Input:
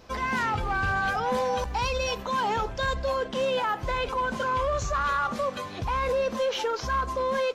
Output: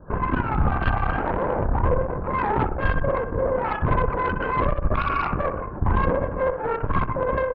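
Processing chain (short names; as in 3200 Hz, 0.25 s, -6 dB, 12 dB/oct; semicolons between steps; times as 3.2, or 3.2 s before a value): Chebyshev low-pass 1700 Hz, order 10; low shelf 220 Hz +12 dB; in parallel at 0 dB: vocal rider 0.5 s; on the sum: LPC vocoder at 8 kHz whisper; on a send: feedback echo 63 ms, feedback 49%, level -8.5 dB; on the sum: added harmonics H 2 -9 dB, 4 -10 dB, 7 -43 dB, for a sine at -4 dBFS; gain -5 dB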